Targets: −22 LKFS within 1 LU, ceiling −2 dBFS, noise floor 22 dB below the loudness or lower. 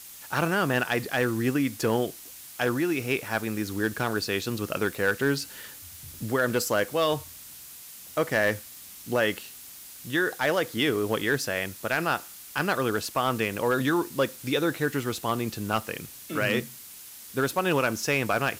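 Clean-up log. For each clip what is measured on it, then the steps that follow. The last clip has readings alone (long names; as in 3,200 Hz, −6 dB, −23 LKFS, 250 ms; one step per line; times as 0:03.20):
share of clipped samples 0.2%; peaks flattened at −15.0 dBFS; background noise floor −45 dBFS; target noise floor −50 dBFS; integrated loudness −27.5 LKFS; sample peak −15.0 dBFS; target loudness −22.0 LKFS
→ clipped peaks rebuilt −15 dBFS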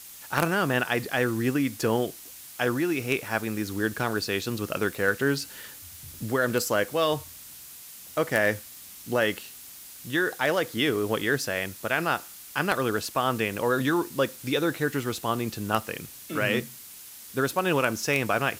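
share of clipped samples 0.0%; background noise floor −45 dBFS; target noise floor −49 dBFS
→ broadband denoise 6 dB, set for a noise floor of −45 dBFS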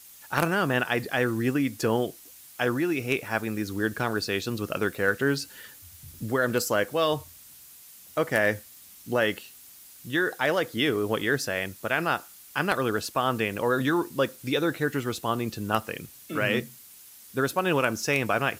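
background noise floor −50 dBFS; integrated loudness −27.0 LKFS; sample peak −6.0 dBFS; target loudness −22.0 LKFS
→ level +5 dB
brickwall limiter −2 dBFS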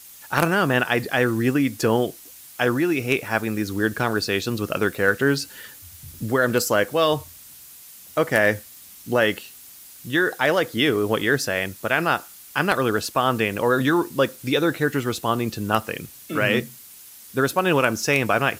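integrated loudness −22.0 LKFS; sample peak −2.0 dBFS; background noise floor −45 dBFS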